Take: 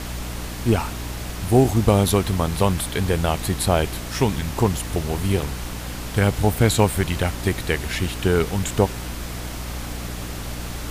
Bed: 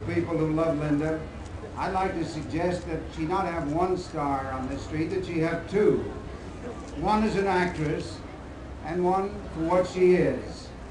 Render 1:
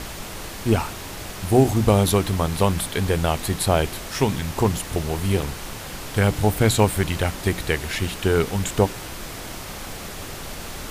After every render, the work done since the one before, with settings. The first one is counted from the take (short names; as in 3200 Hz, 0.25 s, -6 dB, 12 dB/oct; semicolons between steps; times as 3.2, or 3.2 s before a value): notches 60/120/180/240/300 Hz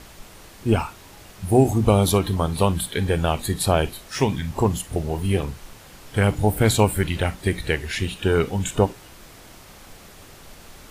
noise print and reduce 11 dB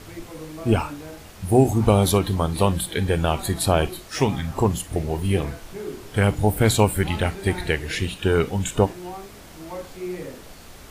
add bed -11.5 dB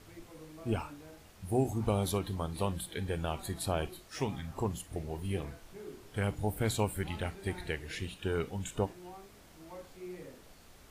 gain -13.5 dB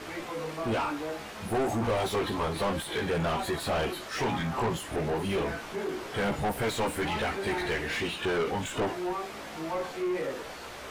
chorus voices 4, 0.27 Hz, delay 16 ms, depth 3 ms; overdrive pedal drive 33 dB, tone 1800 Hz, clips at -20 dBFS